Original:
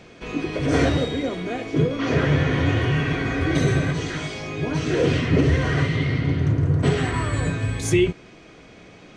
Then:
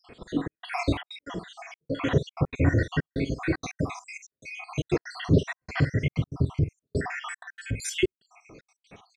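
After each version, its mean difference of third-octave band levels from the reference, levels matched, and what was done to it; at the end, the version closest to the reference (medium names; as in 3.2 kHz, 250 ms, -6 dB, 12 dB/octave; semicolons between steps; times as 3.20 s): 15.0 dB: random holes in the spectrogram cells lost 76%; doubling 47 ms -14 dB; trance gate "xxxxxx..xxxxx.x." 190 bpm -60 dB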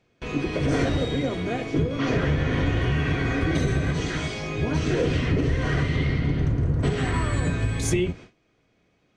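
3.0 dB: octave divider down 1 oct, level -3 dB; gate with hold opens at -34 dBFS; compression, threshold -19 dBFS, peak gain reduction 7.5 dB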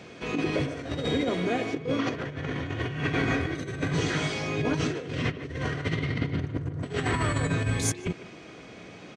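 5.5 dB: high-pass 82 Hz 12 dB/octave; compressor with a negative ratio -25 dBFS, ratio -0.5; speakerphone echo 150 ms, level -12 dB; trim -3 dB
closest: second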